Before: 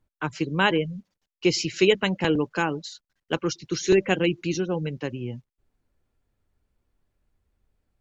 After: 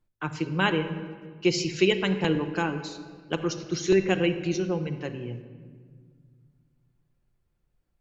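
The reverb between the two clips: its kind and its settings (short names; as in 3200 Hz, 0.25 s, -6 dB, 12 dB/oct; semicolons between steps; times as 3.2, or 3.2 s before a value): shoebox room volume 2400 m³, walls mixed, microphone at 0.87 m; gain -3.5 dB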